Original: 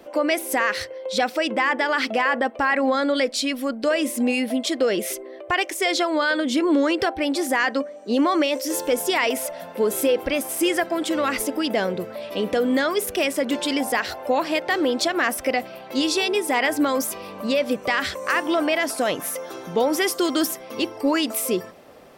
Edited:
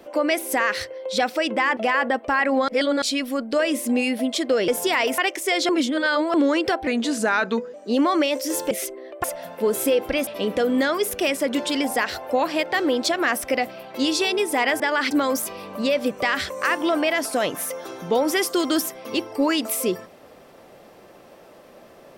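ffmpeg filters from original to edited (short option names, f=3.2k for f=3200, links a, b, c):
-filter_complex "[0:a]asplit=15[a][b][c][d][e][f][g][h][i][j][k][l][m][n][o];[a]atrim=end=1.772[p];[b]atrim=start=2.078:end=2.992[q];[c]atrim=start=2.988:end=3.332,asetpts=PTS-STARTPTS,areverse[r];[d]atrim=start=3.328:end=4.992[s];[e]atrim=start=8.908:end=9.412[t];[f]atrim=start=5.518:end=6.032[u];[g]atrim=start=6.028:end=6.682,asetpts=PTS-STARTPTS,areverse[v];[h]atrim=start=6.678:end=7.214[w];[i]atrim=start=7.21:end=7.94,asetpts=PTS-STARTPTS,asetrate=37044,aresample=44100[x];[j]atrim=start=7.936:end=8.912[y];[k]atrim=start=4.988:end=5.522[z];[l]atrim=start=9.408:end=10.442[aa];[m]atrim=start=12.228:end=16.762[ab];[n]atrim=start=1.768:end=2.082[ac];[o]atrim=start=16.758[ad];[p][q]acrossfade=d=0.004:c1=hsin:c2=hsin[ae];[ae][r]acrossfade=d=0.004:c1=hsin:c2=hsin[af];[af][s]acrossfade=d=0.004:c1=hsin:c2=hsin[ag];[ag][t]acrossfade=d=0.004:c1=hsin:c2=hsin[ah];[ah][u]acrossfade=d=0.004:c1=hsin:c2=hsin[ai];[ai][v]acrossfade=d=0.004:c1=hsin:c2=hsin[aj];[aj][w]acrossfade=d=0.004:c1=hsin:c2=hsin[ak];[ak][x]acrossfade=d=0.004:c1=hsin:c2=hsin[al];[al][y]acrossfade=d=0.004:c1=hsin:c2=hsin[am];[am][z]acrossfade=d=0.004:c1=hsin:c2=hsin[an];[an][aa]acrossfade=d=0.004:c1=hsin:c2=hsin[ao];[ao][ab]acrossfade=d=0.004:c1=hsin:c2=hsin[ap];[ap][ac]acrossfade=d=0.004:c1=hsin:c2=hsin[aq];[aq][ad]acrossfade=d=0.004:c1=hsin:c2=hsin"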